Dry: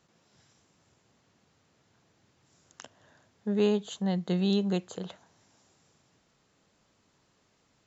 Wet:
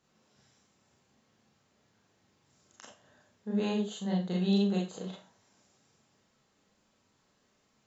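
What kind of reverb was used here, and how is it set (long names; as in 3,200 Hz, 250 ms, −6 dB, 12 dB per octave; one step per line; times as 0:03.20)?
four-comb reverb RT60 0.31 s, combs from 29 ms, DRR −3 dB
level −7 dB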